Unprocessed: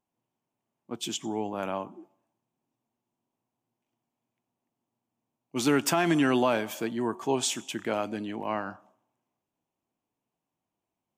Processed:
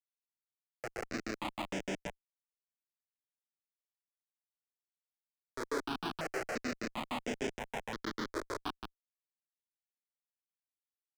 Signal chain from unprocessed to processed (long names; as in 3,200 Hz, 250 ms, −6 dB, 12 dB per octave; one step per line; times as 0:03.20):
running median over 25 samples
flutter between parallel walls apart 6.2 metres, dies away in 1.5 s
granular cloud 149 ms, grains 6.5 per second
downward compressor 2.5 to 1, threshold −39 dBFS, peak gain reduction 14 dB
low-shelf EQ 240 Hz +11 dB
repeating echo 652 ms, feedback 39%, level −23 dB
comparator with hysteresis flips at −32.5 dBFS
three-way crossover with the lows and the highs turned down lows −23 dB, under 280 Hz, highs −16 dB, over 7,800 Hz
step-sequenced phaser 2.9 Hz 760–4,200 Hz
level +13 dB